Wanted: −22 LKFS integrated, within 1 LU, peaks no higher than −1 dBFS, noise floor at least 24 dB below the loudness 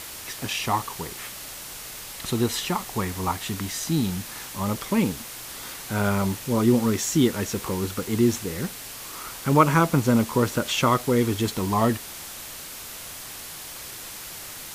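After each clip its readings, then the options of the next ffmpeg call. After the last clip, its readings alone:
background noise floor −39 dBFS; target noise floor −50 dBFS; integrated loudness −25.5 LKFS; sample peak −4.0 dBFS; target loudness −22.0 LKFS
→ -af "afftdn=noise_reduction=11:noise_floor=-39"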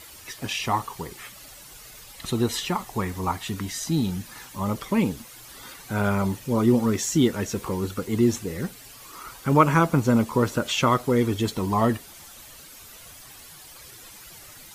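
background noise floor −46 dBFS; target noise floor −49 dBFS
→ -af "afftdn=noise_reduction=6:noise_floor=-46"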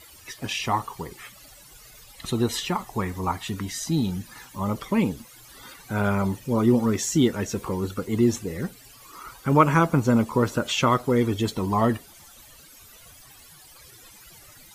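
background noise floor −50 dBFS; integrated loudness −24.5 LKFS; sample peak −4.0 dBFS; target loudness −22.0 LKFS
→ -af "volume=2.5dB"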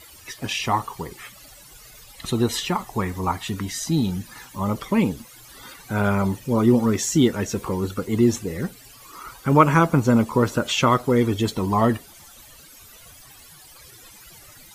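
integrated loudness −22.0 LKFS; sample peak −1.5 dBFS; background noise floor −47 dBFS

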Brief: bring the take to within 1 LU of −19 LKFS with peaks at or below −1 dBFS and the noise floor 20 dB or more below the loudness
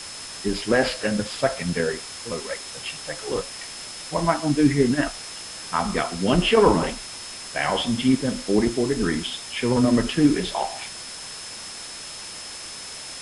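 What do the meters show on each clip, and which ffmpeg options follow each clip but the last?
interfering tone 5,200 Hz; level of the tone −39 dBFS; background noise floor −37 dBFS; target noise floor −45 dBFS; integrated loudness −24.5 LKFS; sample peak −3.5 dBFS; target loudness −19.0 LKFS
→ -af "bandreject=frequency=5200:width=30"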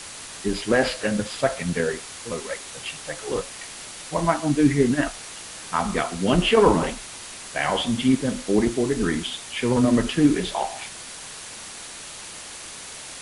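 interfering tone none found; background noise floor −39 dBFS; target noise floor −44 dBFS
→ -af "afftdn=noise_reduction=6:noise_floor=-39"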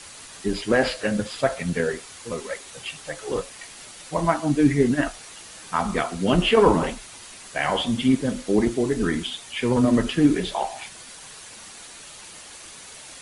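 background noise floor −43 dBFS; target noise floor −44 dBFS
→ -af "afftdn=noise_reduction=6:noise_floor=-43"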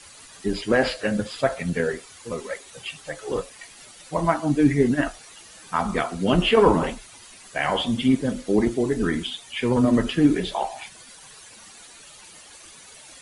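background noise floor −47 dBFS; integrated loudness −23.5 LKFS; sample peak −4.0 dBFS; target loudness −19.0 LKFS
→ -af "volume=4.5dB,alimiter=limit=-1dB:level=0:latency=1"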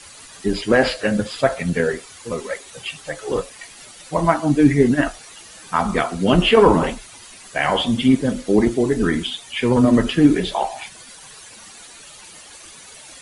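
integrated loudness −19.0 LKFS; sample peak −1.0 dBFS; background noise floor −42 dBFS

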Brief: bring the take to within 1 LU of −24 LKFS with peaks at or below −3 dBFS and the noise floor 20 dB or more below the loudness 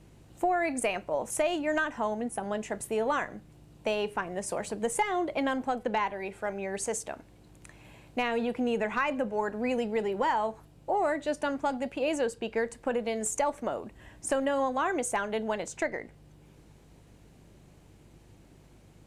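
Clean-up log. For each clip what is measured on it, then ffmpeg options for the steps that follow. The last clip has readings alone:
mains hum 50 Hz; hum harmonics up to 150 Hz; level of the hum −56 dBFS; integrated loudness −31.0 LKFS; sample peak −17.0 dBFS; target loudness −24.0 LKFS
→ -af "bandreject=frequency=50:width_type=h:width=4,bandreject=frequency=100:width_type=h:width=4,bandreject=frequency=150:width_type=h:width=4"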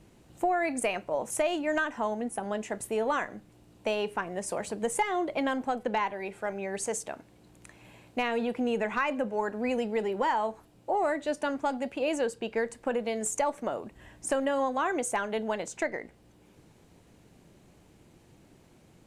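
mains hum none found; integrated loudness −31.0 LKFS; sample peak −17.0 dBFS; target loudness −24.0 LKFS
→ -af "volume=7dB"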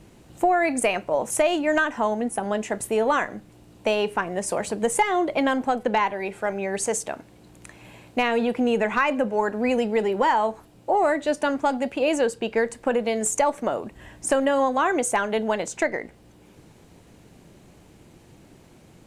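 integrated loudness −24.0 LKFS; sample peak −10.0 dBFS; background noise floor −52 dBFS

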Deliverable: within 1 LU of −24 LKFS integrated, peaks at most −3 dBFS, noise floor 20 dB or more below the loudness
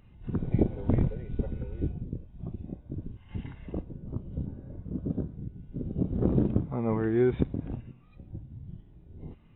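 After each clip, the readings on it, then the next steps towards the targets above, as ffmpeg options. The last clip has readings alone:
integrated loudness −32.0 LKFS; sample peak −10.0 dBFS; target loudness −24.0 LKFS
→ -af "volume=8dB,alimiter=limit=-3dB:level=0:latency=1"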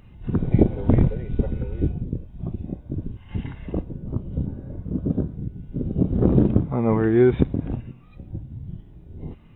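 integrated loudness −24.0 LKFS; sample peak −3.0 dBFS; background noise floor −47 dBFS

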